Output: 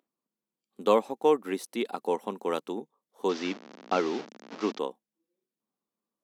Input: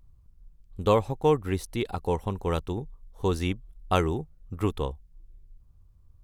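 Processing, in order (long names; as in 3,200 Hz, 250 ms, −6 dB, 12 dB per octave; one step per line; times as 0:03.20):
0:03.29–0:04.79: linear delta modulator 32 kbit/s, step −32 dBFS
elliptic high-pass filter 220 Hz, stop band 70 dB
noise reduction from a noise print of the clip's start 9 dB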